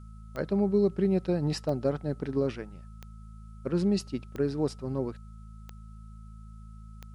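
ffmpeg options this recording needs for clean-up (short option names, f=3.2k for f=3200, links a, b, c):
-af "adeclick=t=4,bandreject=f=54.1:t=h:w=4,bandreject=f=108.2:t=h:w=4,bandreject=f=162.3:t=h:w=4,bandreject=f=216.4:t=h:w=4,bandreject=f=1.3k:w=30,agate=range=-21dB:threshold=-38dB"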